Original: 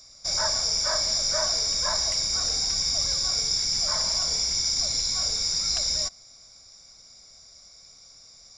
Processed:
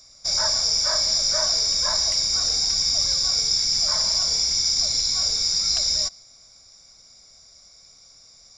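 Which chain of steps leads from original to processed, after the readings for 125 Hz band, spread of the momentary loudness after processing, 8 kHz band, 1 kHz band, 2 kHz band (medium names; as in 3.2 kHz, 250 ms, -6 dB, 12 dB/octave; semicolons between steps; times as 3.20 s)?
0.0 dB, 1 LU, +2.5 dB, 0.0 dB, +0.5 dB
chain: dynamic bell 4.6 kHz, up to +5 dB, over -39 dBFS, Q 1.5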